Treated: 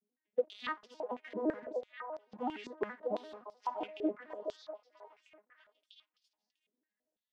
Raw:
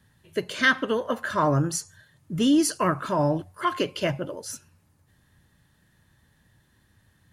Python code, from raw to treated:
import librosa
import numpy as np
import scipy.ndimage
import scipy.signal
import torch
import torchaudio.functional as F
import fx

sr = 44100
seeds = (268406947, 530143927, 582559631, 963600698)

y = fx.vocoder_arp(x, sr, chord='minor triad', root=56, every_ms=85)
y = fx.peak_eq(y, sr, hz=1400.0, db=-14.5, octaves=0.48)
y = fx.leveller(y, sr, passes=2)
y = fx.echo_stepped(y, sr, ms=647, hz=590.0, octaves=1.4, feedback_pct=70, wet_db=-2.0)
y = fx.filter_held_bandpass(y, sr, hz=6.0, low_hz=400.0, high_hz=5200.0)
y = y * librosa.db_to_amplitude(-5.0)